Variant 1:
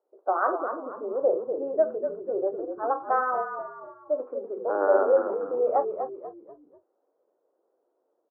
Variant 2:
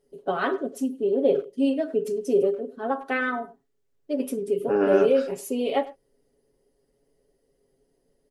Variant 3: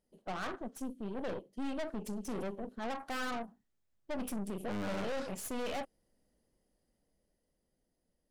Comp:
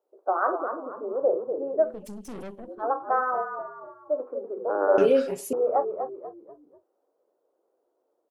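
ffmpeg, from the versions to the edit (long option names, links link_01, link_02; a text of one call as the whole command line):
ffmpeg -i take0.wav -i take1.wav -i take2.wav -filter_complex "[0:a]asplit=3[link_01][link_02][link_03];[link_01]atrim=end=2.07[link_04];[2:a]atrim=start=1.83:end=2.84[link_05];[link_02]atrim=start=2.6:end=4.982[link_06];[1:a]atrim=start=4.978:end=5.532[link_07];[link_03]atrim=start=5.528[link_08];[link_04][link_05]acrossfade=duration=0.24:curve1=tri:curve2=tri[link_09];[link_09][link_06]acrossfade=duration=0.24:curve1=tri:curve2=tri[link_10];[link_10][link_07]acrossfade=duration=0.004:curve1=hsin:curve2=hsin[link_11];[link_11][link_08]acrossfade=duration=0.004:curve1=hsin:curve2=hsin" out.wav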